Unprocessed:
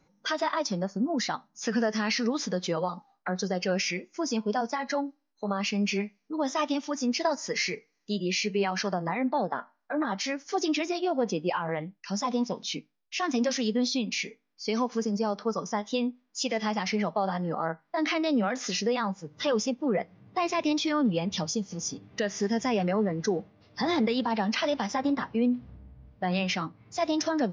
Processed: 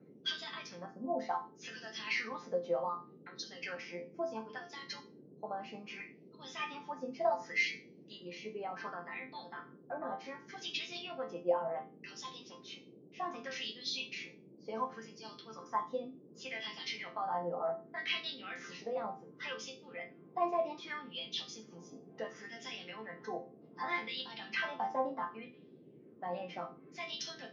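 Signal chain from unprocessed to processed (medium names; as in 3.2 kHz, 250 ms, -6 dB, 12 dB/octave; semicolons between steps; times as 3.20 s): wah-wah 0.67 Hz 600–3700 Hz, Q 2.6; chord resonator F3 major, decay 0.31 s; band noise 140–440 Hz -73 dBFS; trim +15.5 dB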